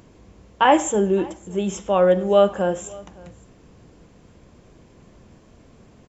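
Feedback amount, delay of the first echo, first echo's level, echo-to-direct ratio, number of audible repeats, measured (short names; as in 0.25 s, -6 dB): no steady repeat, 0.564 s, -23.5 dB, -23.5 dB, 1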